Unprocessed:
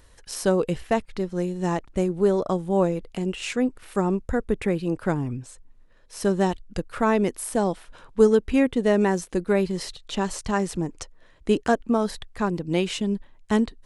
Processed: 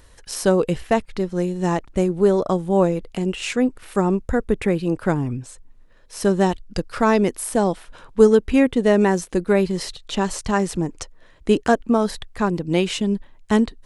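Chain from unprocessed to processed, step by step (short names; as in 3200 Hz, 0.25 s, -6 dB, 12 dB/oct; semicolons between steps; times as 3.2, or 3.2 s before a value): 6.66–7.19 bell 5000 Hz +5.5 dB -> +13.5 dB 0.42 oct; gain +4 dB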